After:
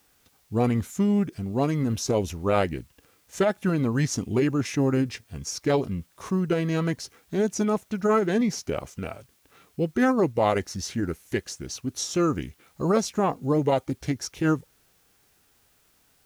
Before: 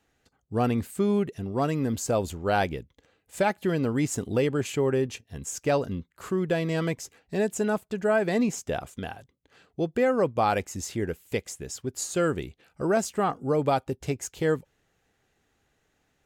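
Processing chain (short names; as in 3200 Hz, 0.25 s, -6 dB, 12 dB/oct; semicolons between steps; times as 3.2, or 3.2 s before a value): added noise white -67 dBFS; formant shift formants -3 st; gain +2 dB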